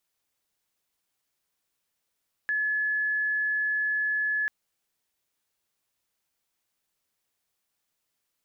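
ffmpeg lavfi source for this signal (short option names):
-f lavfi -i "aevalsrc='0.0631*sin(2*PI*1710*t)':d=1.99:s=44100"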